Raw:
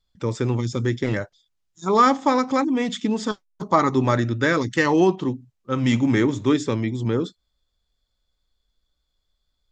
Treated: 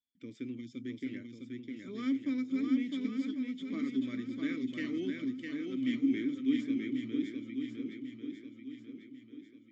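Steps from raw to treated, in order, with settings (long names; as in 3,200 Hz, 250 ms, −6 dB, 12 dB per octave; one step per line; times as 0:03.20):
formant filter i
high-shelf EQ 6,400 Hz +11 dB
on a send: feedback echo with a long and a short gap by turns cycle 1,094 ms, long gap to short 1.5 to 1, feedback 40%, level −4 dB
on the sum: level −7 dB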